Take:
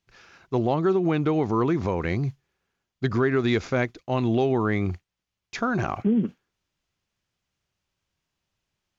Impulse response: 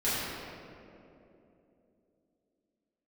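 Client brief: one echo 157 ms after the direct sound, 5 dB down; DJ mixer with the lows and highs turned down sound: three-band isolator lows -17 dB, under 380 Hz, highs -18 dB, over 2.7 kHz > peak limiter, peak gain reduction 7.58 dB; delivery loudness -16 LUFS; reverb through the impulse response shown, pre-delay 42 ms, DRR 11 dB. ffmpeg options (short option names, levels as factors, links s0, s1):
-filter_complex "[0:a]aecho=1:1:157:0.562,asplit=2[s0][s1];[1:a]atrim=start_sample=2205,adelay=42[s2];[s1][s2]afir=irnorm=-1:irlink=0,volume=0.0794[s3];[s0][s3]amix=inputs=2:normalize=0,acrossover=split=380 2700:gain=0.141 1 0.126[s4][s5][s6];[s4][s5][s6]amix=inputs=3:normalize=0,volume=5.62,alimiter=limit=0.596:level=0:latency=1"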